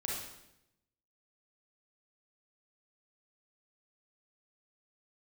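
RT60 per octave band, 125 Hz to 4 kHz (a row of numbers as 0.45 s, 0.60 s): 1.1 s, 1.0 s, 0.90 s, 0.80 s, 0.80 s, 0.75 s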